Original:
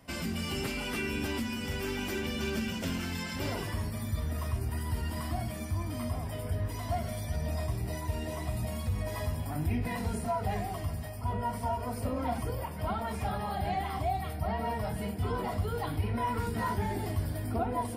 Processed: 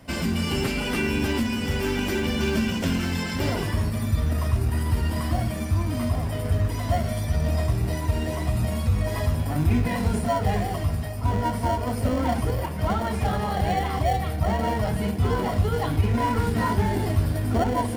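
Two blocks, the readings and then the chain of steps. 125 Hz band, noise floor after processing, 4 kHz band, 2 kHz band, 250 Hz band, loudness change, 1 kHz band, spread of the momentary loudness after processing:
+10.0 dB, -29 dBFS, +7.5 dB, +7.5 dB, +9.5 dB, +9.0 dB, +6.5 dB, 3 LU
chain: in parallel at -8 dB: sample-and-hold 35×; on the sum: treble shelf 9.8 kHz -4 dB; trim +7 dB

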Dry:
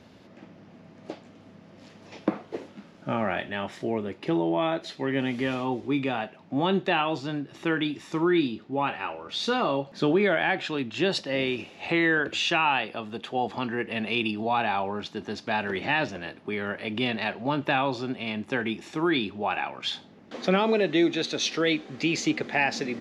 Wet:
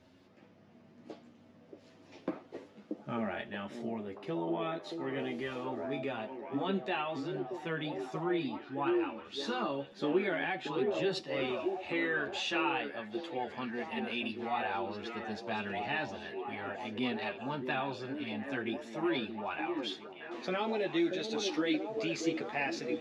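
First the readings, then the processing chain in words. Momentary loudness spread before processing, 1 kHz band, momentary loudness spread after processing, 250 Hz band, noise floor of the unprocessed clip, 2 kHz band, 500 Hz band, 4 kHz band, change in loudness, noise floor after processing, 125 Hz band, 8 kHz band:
10 LU, -8.5 dB, 8 LU, -8.0 dB, -52 dBFS, -9.5 dB, -7.0 dB, -10.0 dB, -8.5 dB, -60 dBFS, -10.5 dB, -10.5 dB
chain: repeats whose band climbs or falls 630 ms, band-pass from 350 Hz, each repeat 0.7 oct, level -1 dB; chorus voices 4, 0.11 Hz, delay 11 ms, depth 3.2 ms; trim -7 dB

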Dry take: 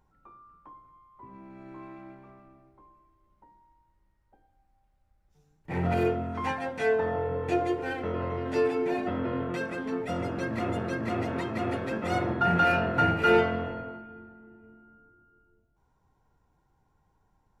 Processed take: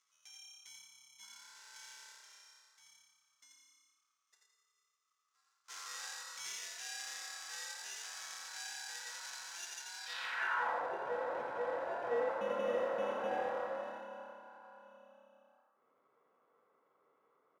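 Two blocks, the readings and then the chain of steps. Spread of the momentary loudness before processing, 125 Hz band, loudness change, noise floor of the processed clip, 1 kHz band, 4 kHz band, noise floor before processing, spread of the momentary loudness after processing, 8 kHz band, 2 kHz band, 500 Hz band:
20 LU, under -30 dB, -11.5 dB, -81 dBFS, -11.0 dB, -3.0 dB, -71 dBFS, 19 LU, no reading, -9.0 dB, -10.5 dB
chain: high-pass 44 Hz; in parallel at +1 dB: compression, threshold -40 dBFS, peak gain reduction 21 dB; on the sum: sample-and-hold 14×; saturation -26.5 dBFS, distortion -8 dB; feedback comb 720 Hz, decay 0.27 s, mix 70%; ring modulator 1.2 kHz; band-pass sweep 6.2 kHz -> 530 Hz, 9.96–10.83 s; frequency-shifting echo 85 ms, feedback 36%, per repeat +34 Hz, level -3.5 dB; trim +12 dB

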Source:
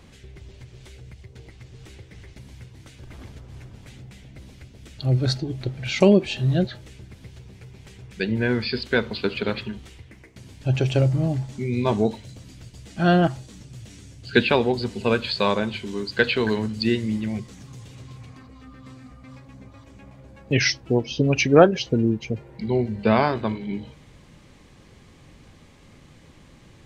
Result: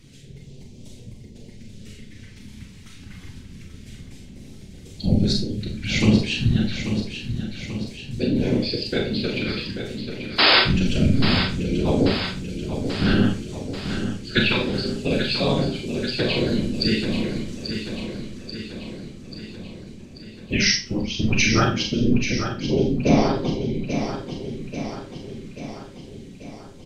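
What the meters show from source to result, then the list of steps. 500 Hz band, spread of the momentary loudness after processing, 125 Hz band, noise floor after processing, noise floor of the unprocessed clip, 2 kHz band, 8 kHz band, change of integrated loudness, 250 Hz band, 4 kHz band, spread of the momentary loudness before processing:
-3.0 dB, 21 LU, +0.5 dB, -43 dBFS, -50 dBFS, +2.0 dB, +5.5 dB, 0.0 dB, +2.5 dB, +7.0 dB, 22 LU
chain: hum notches 60/120 Hz; phase shifter stages 2, 0.27 Hz, lowest notch 480–1500 Hz; whisper effect; painted sound noise, 10.38–10.60 s, 220–5200 Hz -17 dBFS; flange 0.13 Hz, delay 7.1 ms, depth 4.5 ms, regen +58%; feedback delay 837 ms, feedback 58%, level -8.5 dB; Schroeder reverb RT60 0.32 s, combs from 29 ms, DRR 1.5 dB; trim +5 dB

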